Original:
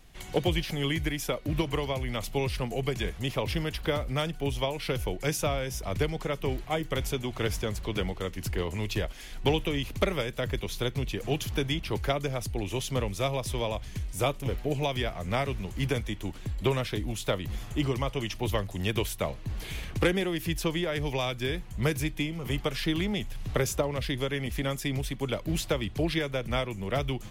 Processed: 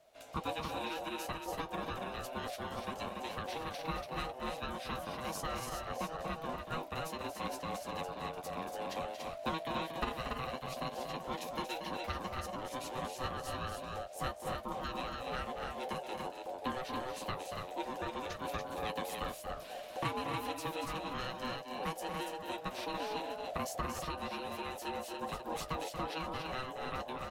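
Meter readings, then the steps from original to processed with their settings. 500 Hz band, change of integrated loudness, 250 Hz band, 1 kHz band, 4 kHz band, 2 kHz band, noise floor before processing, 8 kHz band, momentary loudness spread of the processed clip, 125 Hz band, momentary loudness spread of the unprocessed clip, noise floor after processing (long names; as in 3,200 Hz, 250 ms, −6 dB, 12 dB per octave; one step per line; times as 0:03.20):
−10.0 dB, −9.0 dB, −11.5 dB, −0.5 dB, −10.0 dB, −8.5 dB, −42 dBFS, −9.5 dB, 3 LU, −16.5 dB, 4 LU, −48 dBFS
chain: flanger 0.2 Hz, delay 10 ms, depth 1 ms, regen −36%
ring modulation 640 Hz
loudspeakers that aren't time-aligned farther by 80 metres −8 dB, 98 metres −4 dB
level −4.5 dB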